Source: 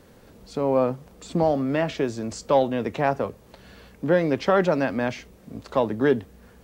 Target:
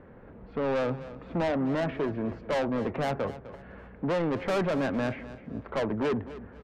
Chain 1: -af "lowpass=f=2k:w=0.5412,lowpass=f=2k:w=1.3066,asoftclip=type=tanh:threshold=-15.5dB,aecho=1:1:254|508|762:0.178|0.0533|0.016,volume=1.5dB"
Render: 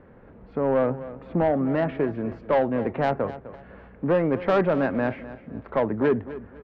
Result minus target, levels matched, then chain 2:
soft clip: distortion -8 dB
-af "lowpass=f=2k:w=0.5412,lowpass=f=2k:w=1.3066,asoftclip=type=tanh:threshold=-26dB,aecho=1:1:254|508|762:0.178|0.0533|0.016,volume=1.5dB"

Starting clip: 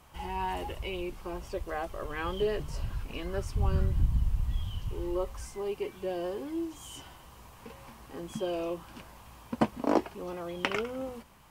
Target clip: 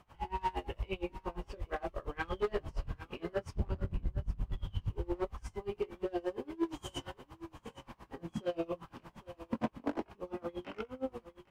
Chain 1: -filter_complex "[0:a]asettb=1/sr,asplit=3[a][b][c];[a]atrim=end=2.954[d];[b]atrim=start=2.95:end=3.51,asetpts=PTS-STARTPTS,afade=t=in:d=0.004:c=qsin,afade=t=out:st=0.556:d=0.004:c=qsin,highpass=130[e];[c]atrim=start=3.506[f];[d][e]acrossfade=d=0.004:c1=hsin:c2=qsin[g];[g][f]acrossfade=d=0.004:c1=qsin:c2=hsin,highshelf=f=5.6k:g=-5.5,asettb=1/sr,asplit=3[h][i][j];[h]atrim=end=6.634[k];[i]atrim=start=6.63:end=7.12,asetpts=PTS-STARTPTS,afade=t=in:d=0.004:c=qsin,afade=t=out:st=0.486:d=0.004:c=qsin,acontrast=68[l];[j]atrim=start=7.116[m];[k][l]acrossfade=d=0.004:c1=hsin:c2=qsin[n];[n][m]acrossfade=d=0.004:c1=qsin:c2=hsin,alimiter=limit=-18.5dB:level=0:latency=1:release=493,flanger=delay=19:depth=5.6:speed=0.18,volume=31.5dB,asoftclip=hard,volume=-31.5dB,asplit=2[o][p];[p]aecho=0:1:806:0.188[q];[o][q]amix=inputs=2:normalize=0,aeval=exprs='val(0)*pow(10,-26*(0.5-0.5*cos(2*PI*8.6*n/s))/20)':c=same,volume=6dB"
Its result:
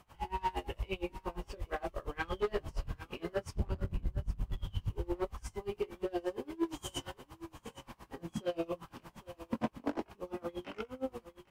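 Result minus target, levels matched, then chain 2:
8000 Hz band +6.0 dB
-filter_complex "[0:a]asettb=1/sr,asplit=3[a][b][c];[a]atrim=end=2.954[d];[b]atrim=start=2.95:end=3.51,asetpts=PTS-STARTPTS,afade=t=in:d=0.004:c=qsin,afade=t=out:st=0.556:d=0.004:c=qsin,highpass=130[e];[c]atrim=start=3.506[f];[d][e]acrossfade=d=0.004:c1=hsin:c2=qsin[g];[g][f]acrossfade=d=0.004:c1=qsin:c2=hsin,highshelf=f=5.6k:g=-15.5,asettb=1/sr,asplit=3[h][i][j];[h]atrim=end=6.634[k];[i]atrim=start=6.63:end=7.12,asetpts=PTS-STARTPTS,afade=t=in:d=0.004:c=qsin,afade=t=out:st=0.486:d=0.004:c=qsin,acontrast=68[l];[j]atrim=start=7.116[m];[k][l]acrossfade=d=0.004:c1=hsin:c2=qsin[n];[n][m]acrossfade=d=0.004:c1=qsin:c2=hsin,alimiter=limit=-18.5dB:level=0:latency=1:release=493,flanger=delay=19:depth=5.6:speed=0.18,volume=31.5dB,asoftclip=hard,volume=-31.5dB,asplit=2[o][p];[p]aecho=0:1:806:0.188[q];[o][q]amix=inputs=2:normalize=0,aeval=exprs='val(0)*pow(10,-26*(0.5-0.5*cos(2*PI*8.6*n/s))/20)':c=same,volume=6dB"

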